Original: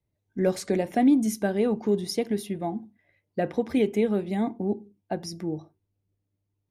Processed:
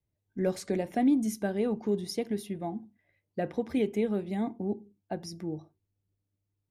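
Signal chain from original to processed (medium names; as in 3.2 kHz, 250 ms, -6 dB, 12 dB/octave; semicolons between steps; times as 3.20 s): bass shelf 140 Hz +3.5 dB; trim -5.5 dB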